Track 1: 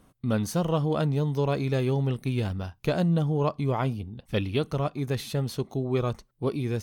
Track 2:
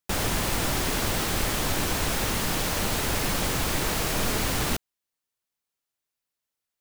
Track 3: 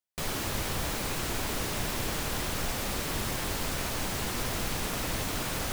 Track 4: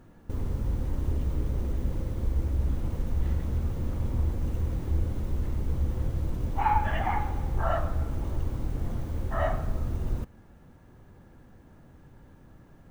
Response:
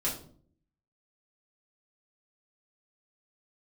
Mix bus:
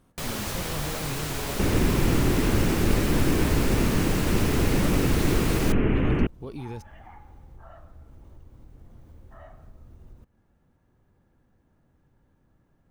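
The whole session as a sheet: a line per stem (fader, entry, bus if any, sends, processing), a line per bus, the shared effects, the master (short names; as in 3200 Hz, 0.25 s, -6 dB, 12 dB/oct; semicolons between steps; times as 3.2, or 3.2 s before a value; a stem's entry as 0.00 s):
-5.5 dB, 0.00 s, no send, limiter -23 dBFS, peak gain reduction 9.5 dB
-3.0 dB, 1.50 s, no send, steep low-pass 2900 Hz 72 dB/oct; resonant low shelf 500 Hz +9.5 dB, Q 1.5
+0.5 dB, 0.00 s, no send, dry
-12.5 dB, 0.00 s, no send, compressor 2.5:1, threshold -34 dBFS, peak gain reduction 10.5 dB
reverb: off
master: dry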